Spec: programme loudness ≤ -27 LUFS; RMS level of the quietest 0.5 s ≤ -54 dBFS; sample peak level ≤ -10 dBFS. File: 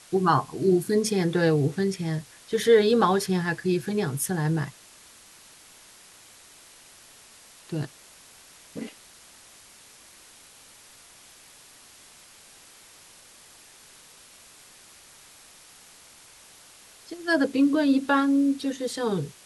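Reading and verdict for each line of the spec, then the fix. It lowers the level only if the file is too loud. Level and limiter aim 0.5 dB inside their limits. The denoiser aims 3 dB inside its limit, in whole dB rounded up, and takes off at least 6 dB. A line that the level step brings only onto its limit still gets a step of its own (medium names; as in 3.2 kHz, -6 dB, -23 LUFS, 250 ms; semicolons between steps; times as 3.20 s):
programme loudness -24.5 LUFS: fail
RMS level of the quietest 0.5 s -52 dBFS: fail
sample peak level -7.5 dBFS: fail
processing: trim -3 dB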